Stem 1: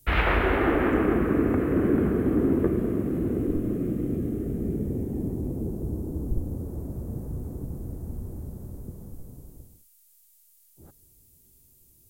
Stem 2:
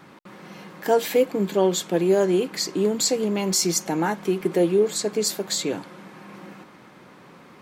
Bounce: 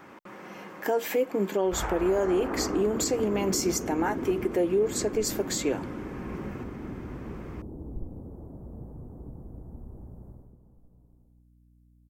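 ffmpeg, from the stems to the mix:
-filter_complex "[0:a]equalizer=f=86:w=1.5:g=-3,aeval=exprs='val(0)+0.00891*(sin(2*PI*60*n/s)+sin(2*PI*2*60*n/s)/2+sin(2*PI*3*60*n/s)/3+sin(2*PI*4*60*n/s)/4+sin(2*PI*5*60*n/s)/5)':c=same,firequalizer=gain_entry='entry(370,0);entry(850,6);entry(2700,-15)':delay=0.05:min_phase=1,adelay=1650,volume=-8dB,afade=t=out:st=10.3:d=0.24:silence=0.334965[a];[1:a]equalizer=f=160:t=o:w=0.67:g=-10,equalizer=f=4k:t=o:w=0.67:g=-10,equalizer=f=10k:t=o:w=0.67:g=-8,volume=1dB[b];[a][b]amix=inputs=2:normalize=0,alimiter=limit=-17dB:level=0:latency=1:release=165"

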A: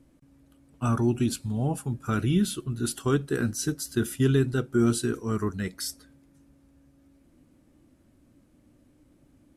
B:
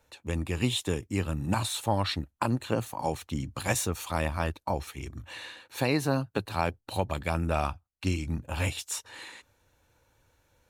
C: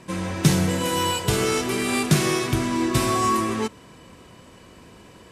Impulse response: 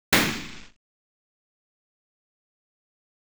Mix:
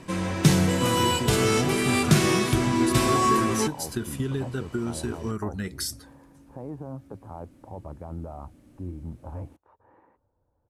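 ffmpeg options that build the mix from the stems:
-filter_complex "[0:a]acompressor=threshold=-32dB:ratio=6,volume=-0.5dB[a];[1:a]lowpass=f=1k:w=0.5412,lowpass=f=1k:w=1.3066,alimiter=limit=-23dB:level=0:latency=1:release=29,adelay=750,volume=-10dB[b];[2:a]highshelf=f=7.9k:g=-3,volume=-5.5dB[c];[a][b][c]amix=inputs=3:normalize=0,acontrast=36"

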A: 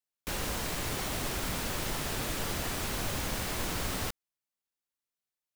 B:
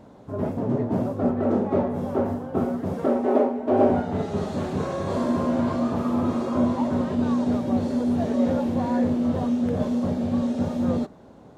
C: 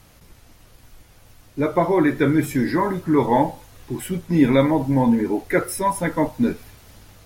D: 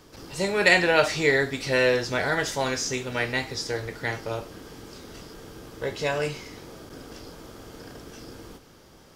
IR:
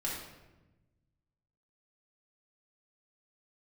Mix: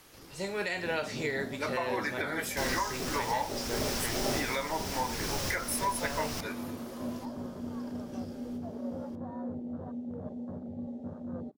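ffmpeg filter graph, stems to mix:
-filter_complex "[0:a]equalizer=f=5.4k:t=o:w=0.44:g=10,adelay=2300,volume=-1dB[a];[1:a]afwtdn=0.0316,adelay=450,volume=-15.5dB[b];[2:a]highpass=930,volume=-2.5dB,asplit=2[c][d];[3:a]volume=-9.5dB[e];[d]apad=whole_len=346474[f];[a][f]sidechaincompress=threshold=-32dB:ratio=5:attack=10:release=511[g];[b][c][e]amix=inputs=3:normalize=0,alimiter=limit=-21.5dB:level=0:latency=1:release=226,volume=0dB[h];[g][h]amix=inputs=2:normalize=0"

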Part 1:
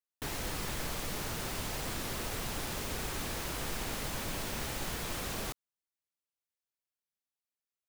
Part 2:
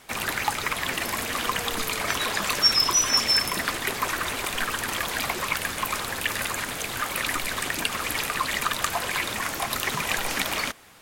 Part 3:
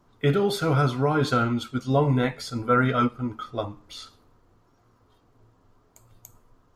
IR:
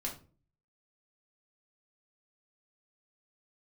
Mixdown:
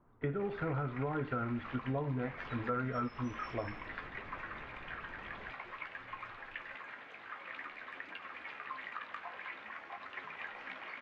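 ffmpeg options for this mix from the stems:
-filter_complex "[0:a]volume=-14dB[a];[1:a]highpass=f=450:p=1,flanger=delay=9.9:depth=8.6:regen=40:speed=0.51:shape=triangular,crystalizer=i=5:c=0,adelay=300,volume=-17dB,asplit=2[b][c];[c]volume=-8dB[d];[2:a]volume=-6dB[e];[3:a]atrim=start_sample=2205[f];[d][f]afir=irnorm=-1:irlink=0[g];[a][b][e][g]amix=inputs=4:normalize=0,lowpass=f=2.1k:w=0.5412,lowpass=f=2.1k:w=1.3066,acompressor=threshold=-33dB:ratio=5"

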